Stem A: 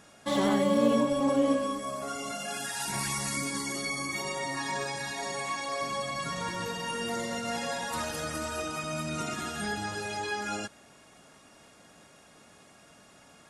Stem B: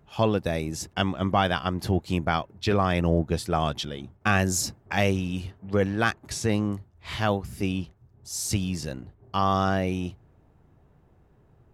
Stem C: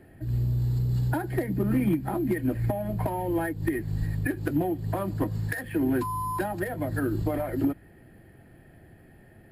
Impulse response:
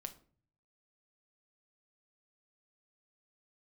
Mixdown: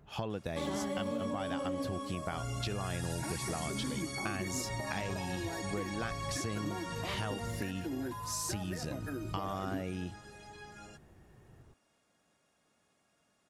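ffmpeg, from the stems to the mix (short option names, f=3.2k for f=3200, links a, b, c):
-filter_complex "[0:a]adelay=300,volume=-6.5dB,afade=t=out:st=7.33:d=0.56:silence=0.266073[a];[1:a]acompressor=threshold=-34dB:ratio=3,volume=-1dB[b];[2:a]adelay=2100,volume=-12dB[c];[a][b][c]amix=inputs=3:normalize=0,acompressor=threshold=-32dB:ratio=6"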